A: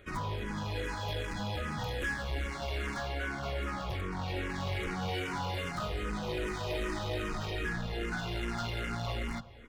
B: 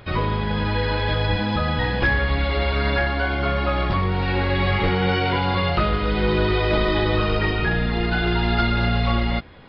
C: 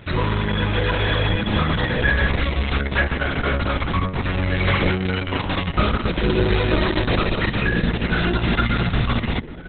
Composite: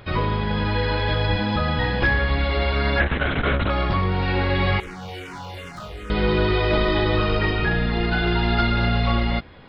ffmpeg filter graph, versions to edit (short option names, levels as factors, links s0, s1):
-filter_complex "[1:a]asplit=3[s0][s1][s2];[s0]atrim=end=3.002[s3];[2:a]atrim=start=2.998:end=3.702[s4];[s1]atrim=start=3.698:end=4.802[s5];[0:a]atrim=start=4.798:end=6.102[s6];[s2]atrim=start=6.098[s7];[s3][s4]acrossfade=d=0.004:c1=hsin:c2=hsin[s8];[s8][s5]acrossfade=d=0.004:c1=hsin:c2=hsin[s9];[s9][s6]acrossfade=d=0.004:c1=hsin:c2=hsin[s10];[s10][s7]acrossfade=d=0.004:c1=hsin:c2=hsin"